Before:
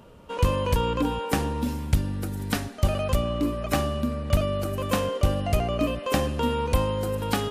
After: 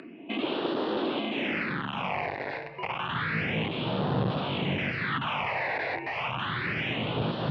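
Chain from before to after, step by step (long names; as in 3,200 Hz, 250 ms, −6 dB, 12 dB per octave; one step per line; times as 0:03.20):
0:05.76–0:06.52: low-shelf EQ 140 Hz −7.5 dB
brickwall limiter −16 dBFS, peak gain reduction 7 dB
0:02.50–0:03.09: downward compressor 16 to 1, threshold −29 dBFS, peak gain reduction 8.5 dB
wrap-around overflow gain 27.5 dB
all-pass phaser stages 8, 0.3 Hz, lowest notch 440–2,400 Hz
single-sideband voice off tune −250 Hz 310–3,300 Hz
high-pass filter sweep 300 Hz → 130 Hz, 0:01.24–0:02.32
upward compression, threshold −49 dBFS
level +7.5 dB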